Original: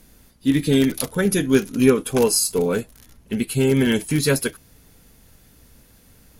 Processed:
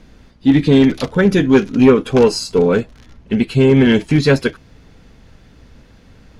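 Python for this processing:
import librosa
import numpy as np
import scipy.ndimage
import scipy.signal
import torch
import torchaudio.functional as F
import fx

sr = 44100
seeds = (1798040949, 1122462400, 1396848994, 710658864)

p1 = fx.air_absorb(x, sr, metres=160.0)
p2 = fx.fold_sine(p1, sr, drive_db=7, ceiling_db=-3.5)
p3 = p1 + (p2 * 10.0 ** (-9.5 / 20.0))
y = p3 * 10.0 ** (1.5 / 20.0)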